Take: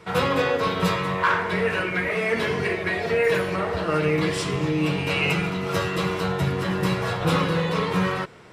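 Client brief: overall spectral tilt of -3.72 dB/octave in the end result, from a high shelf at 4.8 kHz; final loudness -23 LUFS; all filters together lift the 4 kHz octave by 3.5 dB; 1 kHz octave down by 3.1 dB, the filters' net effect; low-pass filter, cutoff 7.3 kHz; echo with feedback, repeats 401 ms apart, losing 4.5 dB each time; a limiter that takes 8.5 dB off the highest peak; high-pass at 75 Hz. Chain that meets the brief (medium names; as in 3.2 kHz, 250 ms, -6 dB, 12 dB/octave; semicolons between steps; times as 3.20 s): high-pass 75 Hz; low-pass 7.3 kHz; peaking EQ 1 kHz -4 dB; peaking EQ 4 kHz +8 dB; treble shelf 4.8 kHz -6.5 dB; peak limiter -18 dBFS; feedback delay 401 ms, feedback 60%, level -4.5 dB; trim +2 dB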